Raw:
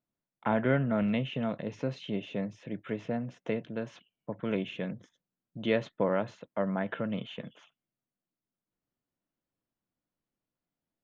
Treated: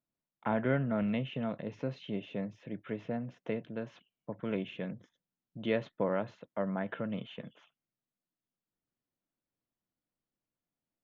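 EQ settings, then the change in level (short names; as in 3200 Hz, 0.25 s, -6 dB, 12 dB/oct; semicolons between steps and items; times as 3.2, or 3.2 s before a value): air absorption 100 m; -3.0 dB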